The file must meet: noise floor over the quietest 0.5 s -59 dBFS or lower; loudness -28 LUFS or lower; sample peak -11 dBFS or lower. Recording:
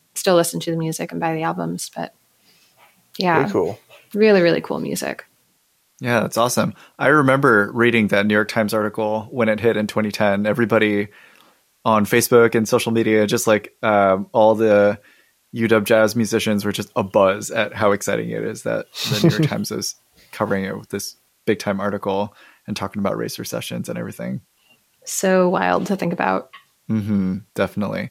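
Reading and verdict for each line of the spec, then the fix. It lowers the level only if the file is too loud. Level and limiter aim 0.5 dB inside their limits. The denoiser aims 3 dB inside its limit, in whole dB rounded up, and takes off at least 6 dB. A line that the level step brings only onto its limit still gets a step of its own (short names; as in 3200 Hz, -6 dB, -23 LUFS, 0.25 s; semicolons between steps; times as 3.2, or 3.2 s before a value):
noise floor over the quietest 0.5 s -63 dBFS: OK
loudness -19.0 LUFS: fail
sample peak -2.5 dBFS: fail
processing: gain -9.5 dB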